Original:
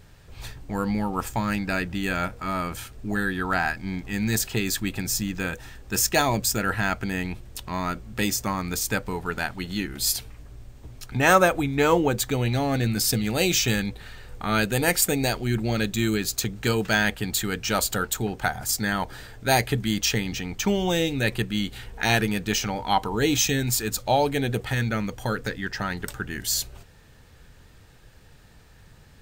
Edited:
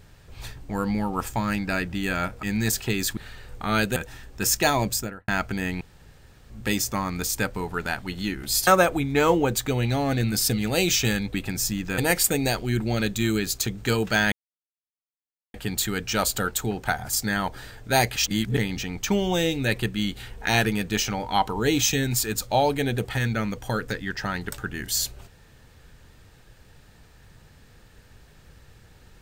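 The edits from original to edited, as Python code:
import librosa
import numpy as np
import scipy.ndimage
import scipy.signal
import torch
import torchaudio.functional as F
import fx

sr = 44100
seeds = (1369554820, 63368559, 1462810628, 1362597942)

y = fx.studio_fade_out(x, sr, start_s=6.4, length_s=0.4)
y = fx.edit(y, sr, fx.cut(start_s=2.43, length_s=1.67),
    fx.swap(start_s=4.84, length_s=0.64, other_s=13.97, other_length_s=0.79),
    fx.room_tone_fill(start_s=7.33, length_s=0.69),
    fx.cut(start_s=10.19, length_s=1.11),
    fx.insert_silence(at_s=17.1, length_s=1.22),
    fx.reverse_span(start_s=19.72, length_s=0.41), tone=tone)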